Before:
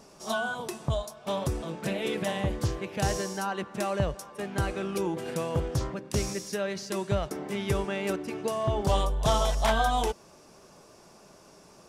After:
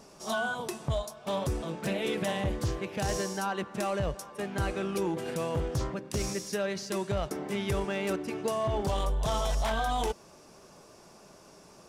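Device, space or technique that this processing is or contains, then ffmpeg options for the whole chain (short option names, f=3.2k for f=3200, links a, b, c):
limiter into clipper: -af "alimiter=limit=-21dB:level=0:latency=1:release=11,asoftclip=type=hard:threshold=-23dB"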